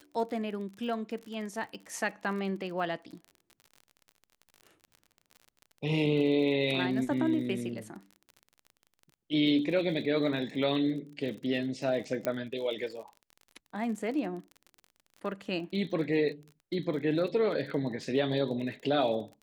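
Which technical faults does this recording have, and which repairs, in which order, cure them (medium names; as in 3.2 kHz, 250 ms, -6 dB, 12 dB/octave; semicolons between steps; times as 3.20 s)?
crackle 37 per s -40 dBFS
12.25 s: pop -16 dBFS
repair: de-click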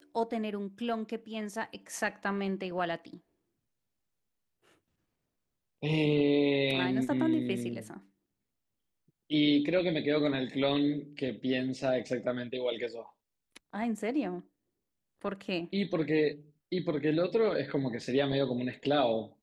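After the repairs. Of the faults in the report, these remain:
12.25 s: pop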